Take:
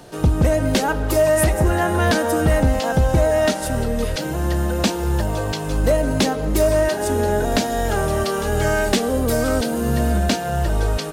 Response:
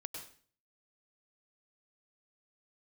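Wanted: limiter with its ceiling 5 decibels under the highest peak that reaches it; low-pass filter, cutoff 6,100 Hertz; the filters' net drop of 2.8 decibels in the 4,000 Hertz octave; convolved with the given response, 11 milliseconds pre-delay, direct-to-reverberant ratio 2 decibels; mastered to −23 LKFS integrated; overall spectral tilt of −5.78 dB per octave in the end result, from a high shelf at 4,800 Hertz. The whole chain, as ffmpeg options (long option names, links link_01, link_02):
-filter_complex "[0:a]lowpass=6100,equalizer=frequency=4000:width_type=o:gain=-5.5,highshelf=frequency=4800:gain=5.5,alimiter=limit=-13.5dB:level=0:latency=1,asplit=2[link_01][link_02];[1:a]atrim=start_sample=2205,adelay=11[link_03];[link_02][link_03]afir=irnorm=-1:irlink=0,volume=0.5dB[link_04];[link_01][link_04]amix=inputs=2:normalize=0,volume=-3dB"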